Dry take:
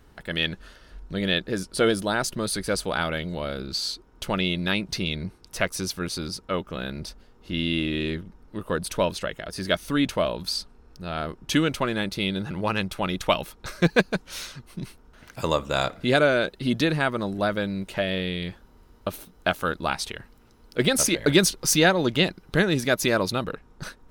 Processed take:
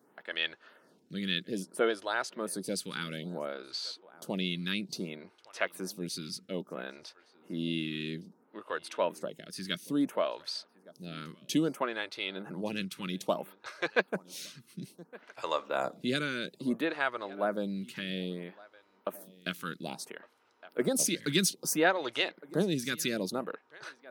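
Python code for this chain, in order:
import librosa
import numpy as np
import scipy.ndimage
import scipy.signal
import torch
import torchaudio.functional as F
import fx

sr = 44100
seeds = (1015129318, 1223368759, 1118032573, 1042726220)

p1 = scipy.signal.sosfilt(scipy.signal.butter(4, 160.0, 'highpass', fs=sr, output='sos'), x)
p2 = p1 + fx.echo_single(p1, sr, ms=1163, db=-22.5, dry=0)
p3 = fx.stagger_phaser(p2, sr, hz=0.6)
y = p3 * librosa.db_to_amplitude(-5.0)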